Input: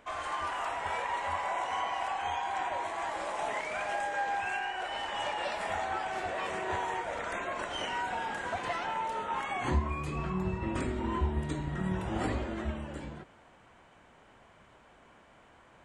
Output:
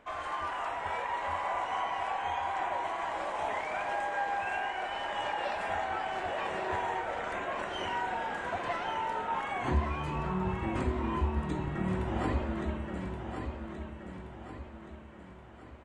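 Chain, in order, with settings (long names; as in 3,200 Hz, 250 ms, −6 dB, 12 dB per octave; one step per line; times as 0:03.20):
high-shelf EQ 4,400 Hz −9.5 dB
on a send: repeating echo 1,125 ms, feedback 46%, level −7 dB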